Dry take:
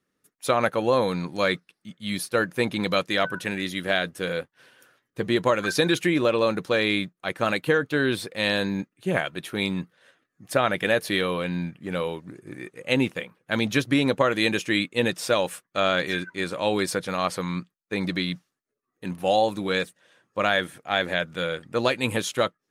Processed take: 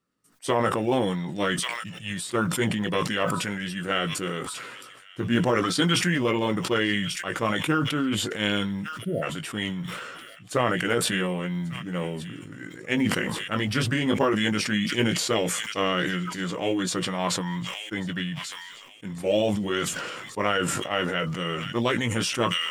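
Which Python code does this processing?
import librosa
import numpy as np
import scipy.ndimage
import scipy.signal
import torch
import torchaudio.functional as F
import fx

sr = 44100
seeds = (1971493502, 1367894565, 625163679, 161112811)

p1 = fx.chorus_voices(x, sr, voices=2, hz=0.18, base_ms=18, depth_ms=1.5, mix_pct=30)
p2 = fx.quant_float(p1, sr, bits=6)
p3 = fx.formant_shift(p2, sr, semitones=-3)
p4 = fx.spec_erase(p3, sr, start_s=8.85, length_s=0.37, low_hz=700.0, high_hz=8900.0)
p5 = p4 + fx.echo_wet_highpass(p4, sr, ms=1142, feedback_pct=32, hz=2400.0, wet_db=-18.5, dry=0)
y = fx.sustainer(p5, sr, db_per_s=31.0)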